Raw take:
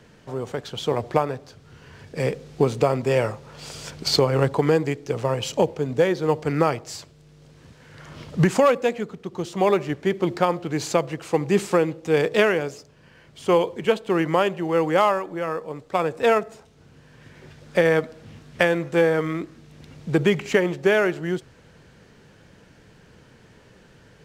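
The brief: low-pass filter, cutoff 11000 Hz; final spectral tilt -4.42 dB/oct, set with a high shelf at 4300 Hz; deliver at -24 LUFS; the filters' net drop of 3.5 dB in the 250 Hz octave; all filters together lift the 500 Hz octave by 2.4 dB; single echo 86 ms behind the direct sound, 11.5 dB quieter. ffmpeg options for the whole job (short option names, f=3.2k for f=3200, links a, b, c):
-af "lowpass=11k,equalizer=f=250:t=o:g=-8.5,equalizer=f=500:t=o:g=5,highshelf=f=4.3k:g=-5,aecho=1:1:86:0.266,volume=-3dB"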